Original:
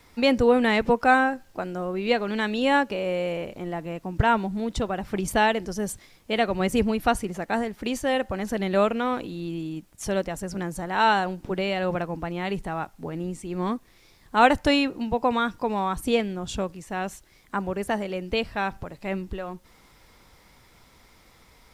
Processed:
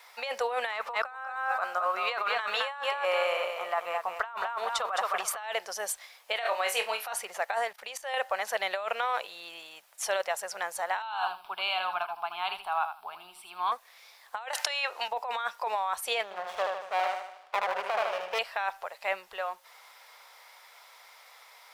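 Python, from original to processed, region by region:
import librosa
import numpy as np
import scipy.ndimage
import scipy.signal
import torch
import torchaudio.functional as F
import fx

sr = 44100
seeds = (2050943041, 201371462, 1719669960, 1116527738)

y = fx.chain(x, sr, fx.peak_eq(hz=1200.0, db=13.0, octaves=0.41),
    fx.echo_feedback(ms=215, feedback_pct=16, wet_db=-7.0), at=(0.72, 5.43))
y = fx.chain(y, sr, fx.highpass(hz=450.0, slope=6),
    fx.room_flutter(wall_m=4.0, rt60_s=0.22), at=(6.36, 7.13))
y = fx.chain(y, sr, fx.peak_eq(hz=140.0, db=14.5, octaves=0.65),
    fx.level_steps(step_db=17), at=(7.71, 8.14))
y = fx.chain(y, sr, fx.fixed_phaser(hz=1900.0, stages=6),
    fx.echo_feedback(ms=80, feedback_pct=17, wet_db=-9.5), at=(11.02, 13.72))
y = fx.chain(y, sr, fx.weighting(curve='A'),
    fx.band_squash(depth_pct=100), at=(14.53, 15.08))
y = fx.chain(y, sr, fx.lowpass(hz=2800.0, slope=12),
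    fx.echo_feedback(ms=76, feedback_pct=50, wet_db=-3.5),
    fx.running_max(window=17), at=(16.23, 18.39))
y = scipy.signal.sosfilt(scipy.signal.cheby2(4, 40, 310.0, 'highpass', fs=sr, output='sos'), y)
y = fx.peak_eq(y, sr, hz=7500.0, db=-3.5, octaves=0.97)
y = fx.over_compress(y, sr, threshold_db=-31.0, ratio=-1.0)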